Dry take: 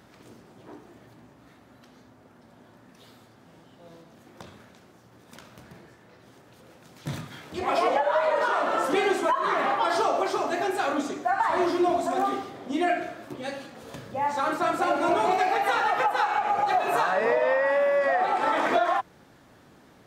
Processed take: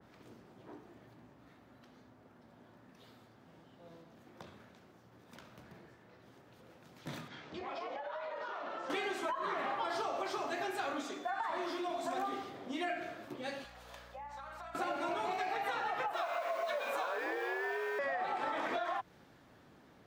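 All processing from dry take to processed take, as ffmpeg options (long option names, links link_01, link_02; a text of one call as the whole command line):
ffmpeg -i in.wav -filter_complex "[0:a]asettb=1/sr,asplit=3[link_01][link_02][link_03];[link_01]atrim=end=7.284[link_04];[link_02]atrim=start=7.28:end=8.9,asetpts=PTS-STARTPTS,afade=type=in:duration=0.004:curve=qsin,afade=type=out:start_time=1.616:duration=0.004:curve=qsin,lowpass=frequency=6200:width=0.5412,lowpass=frequency=6200:width=1.3066,acompressor=threshold=-32dB:ratio=8:attack=3.2:release=140:knee=1:detection=peak[link_05];[link_03]atrim=start=8.896[link_06];[link_04][link_05]acrossfade=duration=0.004:curve1=hsin:curve2=qsin[link_07];[link_07][link_06]acrossfade=duration=0.004:curve1=qsin:curve2=hsin,asettb=1/sr,asplit=3[link_08][link_09][link_10];[link_08]atrim=end=11.044[link_11];[link_09]atrim=start=11.04:end=12.05,asetpts=PTS-STARTPTS,afade=type=in:duration=0.004:curve=qsin,afade=type=out:start_time=1.006:duration=0.004:curve=qsin,acompressor=threshold=-27dB:ratio=1.5:attack=3.2:release=140:knee=1:detection=peak,aeval=exprs='val(0)+0.00251*sin(2*PI*3500*n/s)':channel_layout=same,equalizer=frequency=98:width=1.1:gain=-13.5[link_12];[link_10]atrim=start=12.046[link_13];[link_11][link_12]acrossfade=duration=0.004:curve1=hsin:curve2=qsin[link_14];[link_14][link_13]acrossfade=duration=0.004:curve1=qsin:curve2=hsin,asettb=1/sr,asplit=3[link_15][link_16][link_17];[link_15]atrim=end=13.644[link_18];[link_16]atrim=start=13.64:end=14.75,asetpts=PTS-STARTPTS,afade=type=in:duration=0.004:curve=qsin,afade=type=out:start_time=1.106:duration=0.004:curve=qsin,highpass=frequency=610:width=0.5412,highpass=frequency=610:width=1.3066,acompressor=threshold=-37dB:ratio=16:attack=3.2:release=140:knee=1:detection=peak,aeval=exprs='val(0)+0.00251*(sin(2*PI*60*n/s)+sin(2*PI*2*60*n/s)/2+sin(2*PI*3*60*n/s)/3+sin(2*PI*4*60*n/s)/4+sin(2*PI*5*60*n/s)/5)':channel_layout=same[link_19];[link_17]atrim=start=14.746[link_20];[link_18][link_19]acrossfade=duration=0.004:curve1=hsin:curve2=qsin[link_21];[link_21][link_20]acrossfade=duration=0.004:curve1=qsin:curve2=hsin,asettb=1/sr,asplit=3[link_22][link_23][link_24];[link_22]atrim=end=16.134[link_25];[link_23]atrim=start=16.13:end=17.99,asetpts=PTS-STARTPTS,afade=type=in:duration=0.004:curve=qsin,afade=type=out:start_time=1.856:duration=0.004:curve=qsin,aeval=exprs='val(0)+0.5*0.0126*sgn(val(0))':channel_layout=same,highpass=frequency=620:width=0.5412,highpass=frequency=620:width=1.3066,afreqshift=-150[link_26];[link_24]atrim=start=17.986[link_27];[link_25][link_26]acrossfade=duration=0.004:curve1=hsin:curve2=qsin[link_28];[link_28][link_27]acrossfade=duration=0.004:curve1=qsin:curve2=hsin,equalizer=frequency=9200:width_type=o:width=1.4:gain=-7,acrossover=split=180|860[link_29][link_30][link_31];[link_29]acompressor=threshold=-52dB:ratio=4[link_32];[link_30]acompressor=threshold=-33dB:ratio=4[link_33];[link_31]acompressor=threshold=-33dB:ratio=4[link_34];[link_32][link_33][link_34]amix=inputs=3:normalize=0,adynamicequalizer=threshold=0.00794:dfrequency=2000:dqfactor=0.7:tfrequency=2000:tqfactor=0.7:attack=5:release=100:ratio=0.375:range=2:mode=boostabove:tftype=highshelf,volume=-6.5dB" out.wav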